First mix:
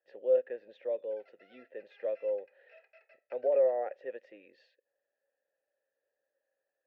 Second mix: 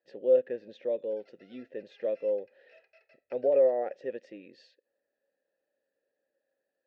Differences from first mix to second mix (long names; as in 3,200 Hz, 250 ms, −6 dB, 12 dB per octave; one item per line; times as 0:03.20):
background −3.5 dB
master: remove three-way crossover with the lows and the highs turned down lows −17 dB, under 460 Hz, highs −15 dB, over 2,900 Hz